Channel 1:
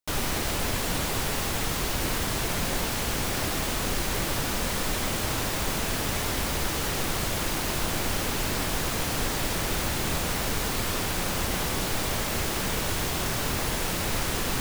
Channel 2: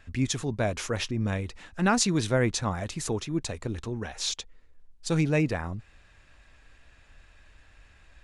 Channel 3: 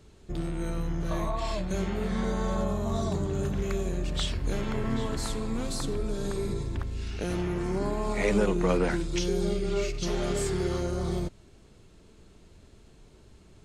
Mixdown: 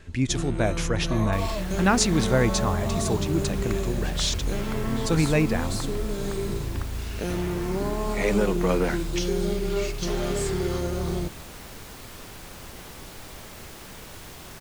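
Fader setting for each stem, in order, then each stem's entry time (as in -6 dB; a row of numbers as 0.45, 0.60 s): -14.0, +2.5, +2.0 dB; 1.25, 0.00, 0.00 s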